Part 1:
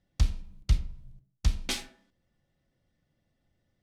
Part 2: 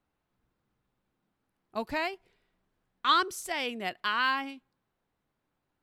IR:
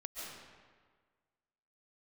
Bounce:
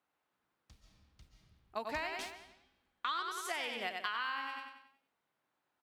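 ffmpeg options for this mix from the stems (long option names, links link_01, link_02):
-filter_complex "[0:a]highpass=frequency=200:poles=1,acrusher=bits=7:mix=0:aa=0.5,adelay=500,volume=-14dB,asplit=2[link_01][link_02];[link_02]volume=-10.5dB[link_03];[1:a]highpass=frequency=950:poles=1,highshelf=frequency=3300:gain=-6.5,volume=2.5dB,asplit=3[link_04][link_05][link_06];[link_05]volume=-5.5dB[link_07];[link_06]apad=whole_len=190711[link_08];[link_01][link_08]sidechaingate=range=-26dB:threshold=-59dB:ratio=16:detection=peak[link_09];[2:a]atrim=start_sample=2205[link_10];[link_03][link_10]afir=irnorm=-1:irlink=0[link_11];[link_07]aecho=0:1:93|186|279|372|465|558:1|0.44|0.194|0.0852|0.0375|0.0165[link_12];[link_09][link_04][link_11][link_12]amix=inputs=4:normalize=0,acompressor=threshold=-34dB:ratio=10"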